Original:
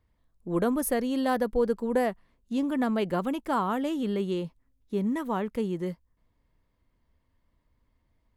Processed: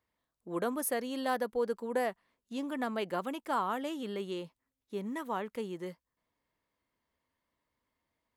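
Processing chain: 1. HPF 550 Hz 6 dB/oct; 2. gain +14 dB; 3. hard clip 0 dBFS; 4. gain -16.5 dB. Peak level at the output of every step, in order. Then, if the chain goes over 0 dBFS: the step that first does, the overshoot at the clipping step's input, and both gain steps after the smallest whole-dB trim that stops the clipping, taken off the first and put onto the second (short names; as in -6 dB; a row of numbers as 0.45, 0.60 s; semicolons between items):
-16.5, -2.5, -2.5, -19.0 dBFS; no overload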